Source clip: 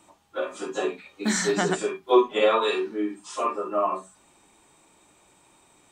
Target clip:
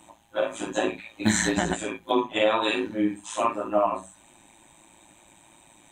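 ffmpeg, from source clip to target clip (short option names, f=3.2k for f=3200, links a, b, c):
-af "alimiter=limit=-15.5dB:level=0:latency=1:release=279,tremolo=f=110:d=0.788,superequalizer=7b=0.316:10b=0.501:14b=0.316,volume=8dB"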